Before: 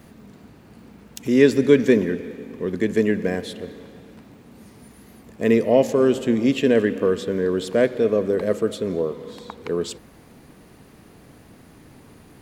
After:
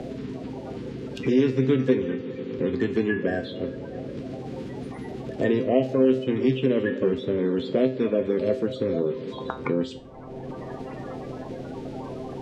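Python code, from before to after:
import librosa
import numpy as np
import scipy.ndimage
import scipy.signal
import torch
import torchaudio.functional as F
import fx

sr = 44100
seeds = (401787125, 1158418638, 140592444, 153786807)

y = fx.spec_quant(x, sr, step_db=30)
y = scipy.signal.sosfilt(scipy.signal.butter(2, 3500.0, 'lowpass', fs=sr, output='sos'), y)
y = fx.comb_fb(y, sr, f0_hz=130.0, decay_s=0.3, harmonics='all', damping=0.0, mix_pct=80)
y = fx.band_squash(y, sr, depth_pct=70)
y = y * 10.0 ** (6.0 / 20.0)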